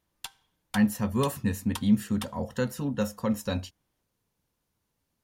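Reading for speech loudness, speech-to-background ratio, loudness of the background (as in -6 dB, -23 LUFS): -29.0 LUFS, 14.0 dB, -43.0 LUFS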